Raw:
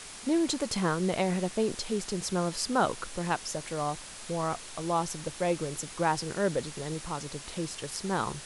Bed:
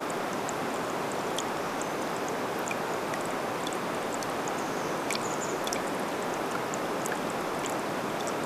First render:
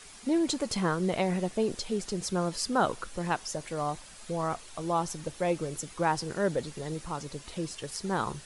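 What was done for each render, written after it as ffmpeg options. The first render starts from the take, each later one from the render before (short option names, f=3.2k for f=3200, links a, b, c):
-af "afftdn=nr=8:nf=-45"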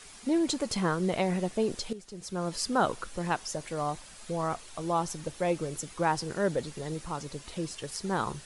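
-filter_complex "[0:a]asplit=2[a][b];[a]atrim=end=1.93,asetpts=PTS-STARTPTS,afade=t=out:st=1.926:d=0.004:c=hsin:silence=0.211349[c];[b]atrim=start=1.93,asetpts=PTS-STARTPTS,afade=t=in:d=0.62:c=qua:silence=0.211349[d];[c][d]concat=n=2:v=0:a=1"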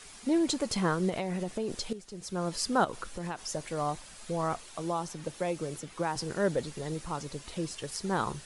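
-filter_complex "[0:a]asettb=1/sr,asplit=3[a][b][c];[a]atrim=end=1.094[d];[b]atrim=start=1.09:end=1.78,asetpts=PTS-STARTPTS,afade=t=in:d=0.004:c=qsin,afade=t=out:st=0.686:d=0.004:c=qsin,acompressor=threshold=-28dB:ratio=6:attack=3.2:release=140:knee=1:detection=peak[e];[c]atrim=start=1.776[f];[d][e]acrossfade=d=0.004:c1=hsin:c2=qsin[g];[g][f]acrossfade=d=0.004:c1=qsin:c2=hsin,asettb=1/sr,asplit=3[h][i][j];[h]atrim=end=2.844[k];[i]atrim=start=2.84:end=3.51,asetpts=PTS-STARTPTS,afade=t=in:d=0.004:c=qsin,afade=t=out:st=0.666:d=0.004:c=qsin,acompressor=threshold=-31dB:ratio=12:attack=3.2:release=140:knee=1:detection=peak[l];[j]atrim=start=3.506[m];[k][l]acrossfade=d=0.004:c1=hsin:c2=qsin[n];[n][m]acrossfade=d=0.004:c1=qsin:c2=hsin,asettb=1/sr,asplit=3[o][p][q];[o]atrim=end=4.634[r];[p]atrim=start=4.63:end=6.16,asetpts=PTS-STARTPTS,afade=t=in:d=0.004:c=qsin,afade=t=out:st=1.526:d=0.004:c=qsin,acrossover=split=110|4100[s][t][u];[s]acompressor=threshold=-57dB:ratio=4[v];[t]acompressor=threshold=-28dB:ratio=4[w];[u]acompressor=threshold=-46dB:ratio=4[x];[v][w][x]amix=inputs=3:normalize=0[y];[q]atrim=start=6.156[z];[r][y]acrossfade=d=0.004:c1=hsin:c2=qsin[aa];[aa][z]acrossfade=d=0.004:c1=qsin:c2=hsin"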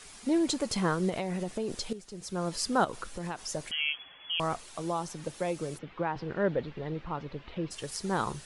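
-filter_complex "[0:a]asettb=1/sr,asplit=3[a][b][c];[a]atrim=end=3.714[d];[b]atrim=start=3.71:end=4.4,asetpts=PTS-STARTPTS,afade=t=in:d=0.004:c=qsin,afade=t=out:st=0.686:d=0.004:c=qsin,lowpass=f=2.9k:t=q:w=0.5098,lowpass=f=2.9k:t=q:w=0.6013,lowpass=f=2.9k:t=q:w=0.9,lowpass=f=2.9k:t=q:w=2.563,afreqshift=-3400[e];[c]atrim=start=4.396[f];[d][e]acrossfade=d=0.004:c1=hsin:c2=qsin[g];[g][f]acrossfade=d=0.004:c1=qsin:c2=hsin,asplit=3[h][i][j];[h]afade=t=out:st=5.77:d=0.02[k];[i]lowpass=f=3.2k:w=0.5412,lowpass=f=3.2k:w=1.3066,afade=t=in:st=5.77:d=0.02,afade=t=out:st=7.7:d=0.02[l];[j]afade=t=in:st=7.7:d=0.02[m];[k][l][m]amix=inputs=3:normalize=0"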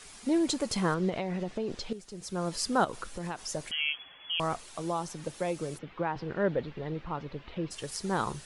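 -filter_complex "[0:a]asettb=1/sr,asplit=3[a][b][c];[a]atrim=end=0.944[d];[b]atrim=start=0.94:end=1.93,asetpts=PTS-STARTPTS,afade=t=in:d=0.004:c=qsin,afade=t=out:st=0.986:d=0.004:c=qsin,lowpass=4.6k[e];[c]atrim=start=1.926[f];[d][e]acrossfade=d=0.004:c1=hsin:c2=qsin[g];[g][f]acrossfade=d=0.004:c1=qsin:c2=hsin"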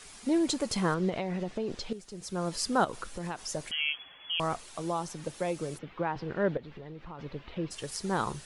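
-filter_complex "[0:a]asettb=1/sr,asplit=3[a][b][c];[a]atrim=end=6.574[d];[b]atrim=start=6.57:end=7.19,asetpts=PTS-STARTPTS,afade=t=in:d=0.004:c=qsin,afade=t=out:st=0.616:d=0.004:c=qsin,acompressor=threshold=-41dB:ratio=4:attack=3.2:release=140:knee=1:detection=peak[e];[c]atrim=start=7.186[f];[d][e]acrossfade=d=0.004:c1=hsin:c2=qsin[g];[g][f]acrossfade=d=0.004:c1=qsin:c2=hsin"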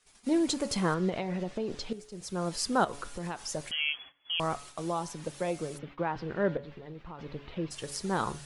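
-af "agate=range=-20dB:threshold=-47dB:ratio=16:detection=peak,bandreject=f=141.9:t=h:w=4,bandreject=f=283.8:t=h:w=4,bandreject=f=425.7:t=h:w=4,bandreject=f=567.6:t=h:w=4,bandreject=f=709.5:t=h:w=4,bandreject=f=851.4:t=h:w=4,bandreject=f=993.3:t=h:w=4,bandreject=f=1.1352k:t=h:w=4,bandreject=f=1.2771k:t=h:w=4,bandreject=f=1.419k:t=h:w=4,bandreject=f=1.5609k:t=h:w=4,bandreject=f=1.7028k:t=h:w=4,bandreject=f=1.8447k:t=h:w=4,bandreject=f=1.9866k:t=h:w=4,bandreject=f=2.1285k:t=h:w=4,bandreject=f=2.2704k:t=h:w=4"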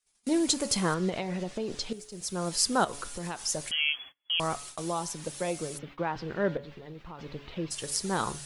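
-af "agate=range=-18dB:threshold=-51dB:ratio=16:detection=peak,highshelf=f=4.3k:g=10.5"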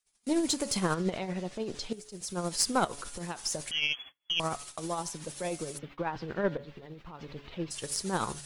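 -af "tremolo=f=13:d=0.44,aeval=exprs='0.376*(cos(1*acos(clip(val(0)/0.376,-1,1)))-cos(1*PI/2))+0.0944*(cos(2*acos(clip(val(0)/0.376,-1,1)))-cos(2*PI/2))+0.0531*(cos(4*acos(clip(val(0)/0.376,-1,1)))-cos(4*PI/2))+0.00668*(cos(6*acos(clip(val(0)/0.376,-1,1)))-cos(6*PI/2))+0.00596*(cos(8*acos(clip(val(0)/0.376,-1,1)))-cos(8*PI/2))':c=same"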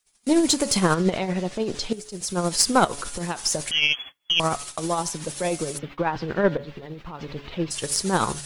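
-af "volume=9dB,alimiter=limit=-3dB:level=0:latency=1"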